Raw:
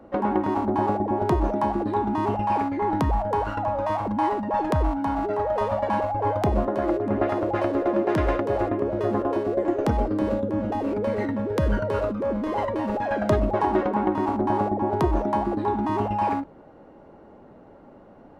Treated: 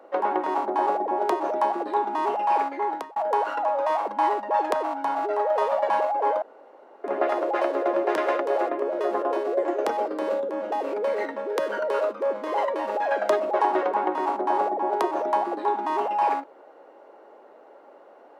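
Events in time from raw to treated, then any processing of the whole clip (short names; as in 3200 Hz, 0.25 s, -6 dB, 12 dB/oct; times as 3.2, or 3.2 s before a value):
2.6–3.16 fade out equal-power
6.42–7.04 room tone
whole clip: HPF 410 Hz 24 dB/oct; gain +2 dB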